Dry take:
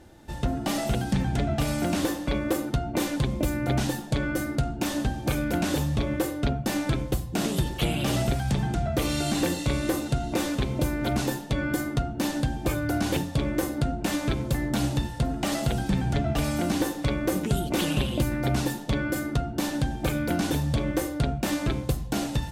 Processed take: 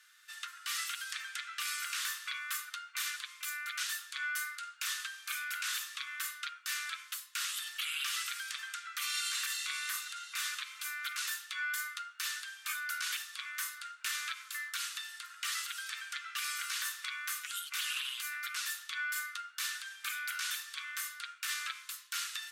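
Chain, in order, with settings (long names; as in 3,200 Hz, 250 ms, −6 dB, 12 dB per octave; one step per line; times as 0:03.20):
Butterworth high-pass 1,200 Hz 72 dB per octave
brickwall limiter −25.5 dBFS, peak gain reduction 7.5 dB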